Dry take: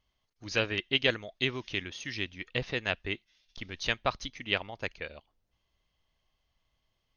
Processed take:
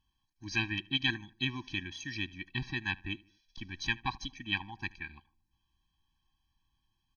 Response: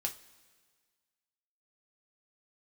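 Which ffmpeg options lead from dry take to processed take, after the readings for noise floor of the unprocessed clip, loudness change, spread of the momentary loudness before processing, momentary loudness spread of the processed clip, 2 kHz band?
−80 dBFS, −3.0 dB, 13 LU, 12 LU, −2.0 dB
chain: -filter_complex "[0:a]asplit=2[link_01][link_02];[link_02]adelay=76,lowpass=frequency=2200:poles=1,volume=-22dB,asplit=2[link_03][link_04];[link_04]adelay=76,lowpass=frequency=2200:poles=1,volume=0.48,asplit=2[link_05][link_06];[link_06]adelay=76,lowpass=frequency=2200:poles=1,volume=0.48[link_07];[link_01][link_03][link_05][link_07]amix=inputs=4:normalize=0,afftfilt=real='re*eq(mod(floor(b*sr/1024/380),2),0)':imag='im*eq(mod(floor(b*sr/1024/380),2),0)':win_size=1024:overlap=0.75"

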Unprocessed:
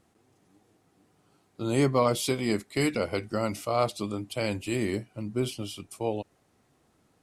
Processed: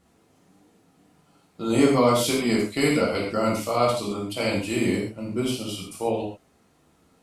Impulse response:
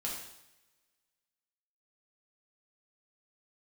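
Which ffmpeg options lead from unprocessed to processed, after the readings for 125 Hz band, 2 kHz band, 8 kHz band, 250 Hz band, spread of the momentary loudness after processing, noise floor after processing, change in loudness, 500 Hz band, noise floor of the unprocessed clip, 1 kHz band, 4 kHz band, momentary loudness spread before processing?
+1.5 dB, +6.0 dB, +5.0 dB, +6.0 dB, 10 LU, −62 dBFS, +5.5 dB, +5.0 dB, −68 dBFS, +5.0 dB, +6.0 dB, 10 LU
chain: -filter_complex "[1:a]atrim=start_sample=2205,atrim=end_sample=6615[link_01];[0:a][link_01]afir=irnorm=-1:irlink=0,volume=4dB"

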